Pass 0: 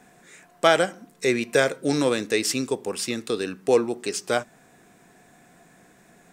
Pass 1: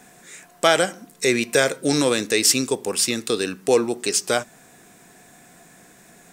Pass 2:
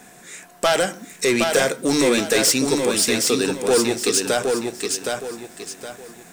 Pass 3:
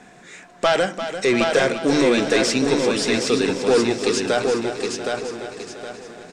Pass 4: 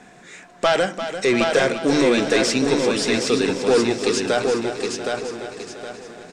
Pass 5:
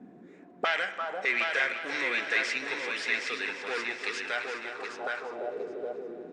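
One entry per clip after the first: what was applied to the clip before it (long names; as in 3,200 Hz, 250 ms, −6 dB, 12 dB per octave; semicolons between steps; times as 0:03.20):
in parallel at −1 dB: brickwall limiter −14 dBFS, peak gain reduction 10.5 dB; on the sum: high-shelf EQ 3,700 Hz +8.5 dB; level −2.5 dB
mains-hum notches 50/100/150 Hz; soft clipping −15.5 dBFS, distortion −11 dB; feedback echo at a low word length 767 ms, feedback 35%, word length 9 bits, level −4 dB; level +3.5 dB
high-frequency loss of the air 110 metres; repeating echo 344 ms, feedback 55%, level −10 dB; level +1 dB
no processing that can be heard
mu-law and A-law mismatch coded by mu; envelope filter 220–2,000 Hz, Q 2.6, up, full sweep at −19 dBFS; spring reverb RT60 3.6 s, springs 41/60 ms, chirp 35 ms, DRR 13 dB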